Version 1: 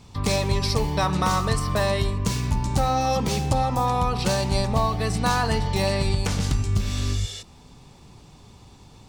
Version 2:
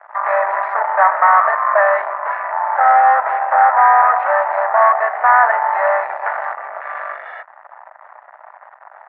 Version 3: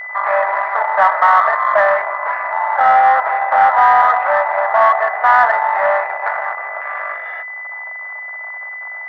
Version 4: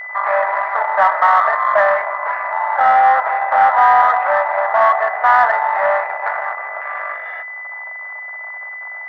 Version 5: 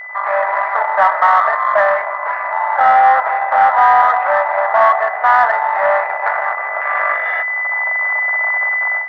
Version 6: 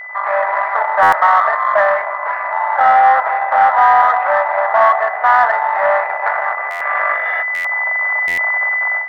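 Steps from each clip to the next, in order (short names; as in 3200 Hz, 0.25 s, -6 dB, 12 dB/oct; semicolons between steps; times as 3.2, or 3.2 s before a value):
sample leveller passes 5; Chebyshev band-pass 620–1900 Hz, order 4; gain +4 dB
whine 2000 Hz -27 dBFS; in parallel at -9.5 dB: soft clip -10 dBFS, distortion -13 dB; on the sum: gain -1.5 dB
reverb, pre-delay 3 ms, DRR 17.5 dB; gain -1 dB
AGC gain up to 14.5 dB; gain -1 dB
stuck buffer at 1.02/6.7/7.54/8.27, samples 512, times 8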